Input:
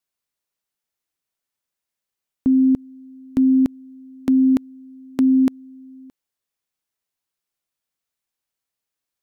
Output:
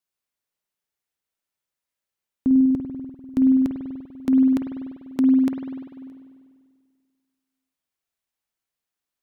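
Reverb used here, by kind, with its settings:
spring reverb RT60 1.9 s, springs 49 ms, chirp 70 ms, DRR 2.5 dB
level −3 dB

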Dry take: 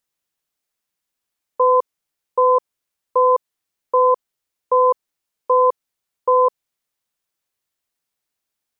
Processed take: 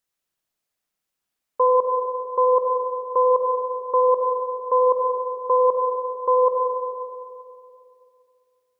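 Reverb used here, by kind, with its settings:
comb and all-pass reverb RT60 2.5 s, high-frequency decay 0.35×, pre-delay 25 ms, DRR 1.5 dB
level −2.5 dB

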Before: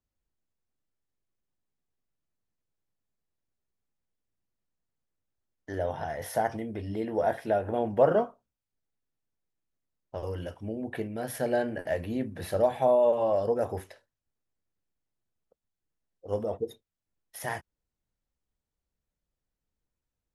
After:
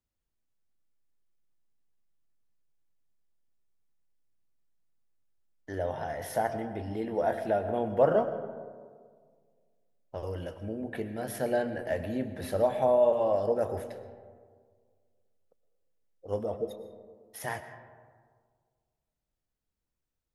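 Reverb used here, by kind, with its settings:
comb and all-pass reverb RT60 1.8 s, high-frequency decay 0.35×, pre-delay 75 ms, DRR 10.5 dB
level −1.5 dB

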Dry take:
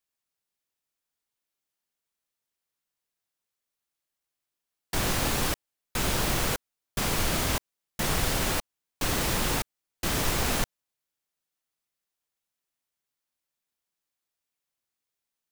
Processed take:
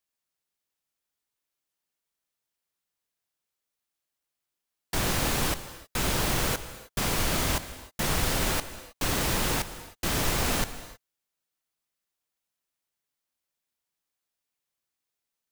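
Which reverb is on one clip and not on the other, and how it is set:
reverb whose tail is shaped and stops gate 340 ms flat, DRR 12 dB

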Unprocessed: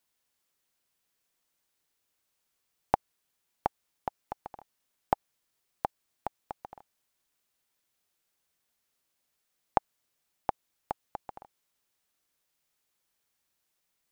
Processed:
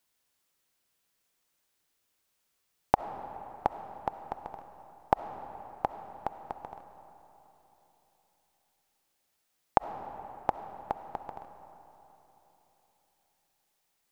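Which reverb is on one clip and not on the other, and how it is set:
comb and all-pass reverb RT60 3.7 s, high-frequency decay 0.6×, pre-delay 25 ms, DRR 9.5 dB
level +2 dB

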